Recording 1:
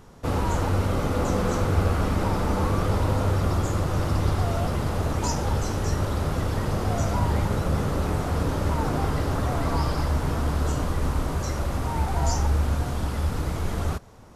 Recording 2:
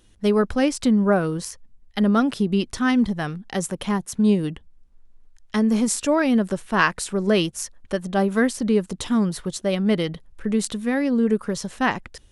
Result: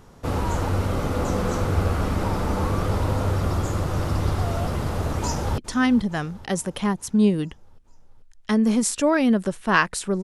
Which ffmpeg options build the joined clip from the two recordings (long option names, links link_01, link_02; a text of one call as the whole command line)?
ffmpeg -i cue0.wav -i cue1.wav -filter_complex "[0:a]apad=whole_dur=10.23,atrim=end=10.23,atrim=end=5.582[link_01];[1:a]atrim=start=2.628:end=7.28[link_02];[link_01][link_02]acrossfade=duration=0.004:curve1=hsin:curve2=hsin,asplit=2[link_03][link_04];[link_04]afade=type=in:start_time=5.2:duration=0.01,afade=type=out:start_time=5.58:duration=0.01,aecho=0:1:440|880|1320|1760|2200|2640:0.158489|0.0950936|0.0570562|0.0342337|0.0205402|0.0123241[link_05];[link_03][link_05]amix=inputs=2:normalize=0" out.wav